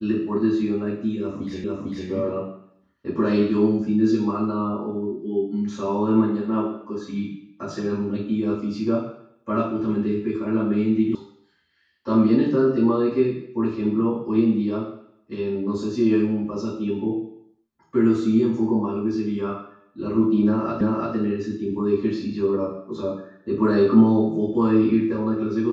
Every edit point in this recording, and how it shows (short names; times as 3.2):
1.64 repeat of the last 0.45 s
11.15 sound cut off
20.81 repeat of the last 0.34 s